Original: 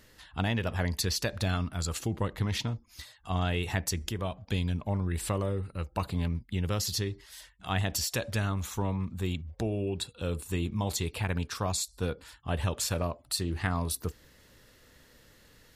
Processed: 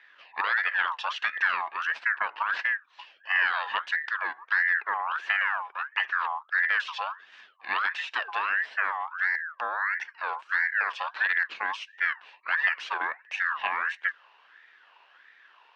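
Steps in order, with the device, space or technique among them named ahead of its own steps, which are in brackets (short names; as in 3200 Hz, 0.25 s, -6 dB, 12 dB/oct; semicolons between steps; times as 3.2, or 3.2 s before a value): voice changer toy (ring modulator with a swept carrier 1400 Hz, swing 35%, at 1.5 Hz; speaker cabinet 560–3800 Hz, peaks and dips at 1000 Hz +4 dB, 1700 Hz +10 dB, 2700 Hz +7 dB)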